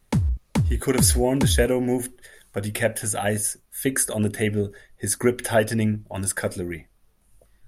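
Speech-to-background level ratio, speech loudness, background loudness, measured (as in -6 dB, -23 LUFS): 1.0 dB, -24.0 LUFS, -25.0 LUFS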